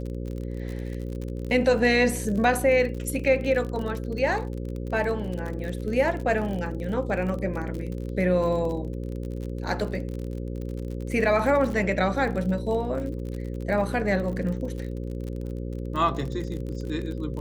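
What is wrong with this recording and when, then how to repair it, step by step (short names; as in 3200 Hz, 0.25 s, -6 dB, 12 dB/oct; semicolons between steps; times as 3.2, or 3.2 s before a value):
buzz 60 Hz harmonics 9 -32 dBFS
crackle 44/s -32 dBFS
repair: de-click; de-hum 60 Hz, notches 9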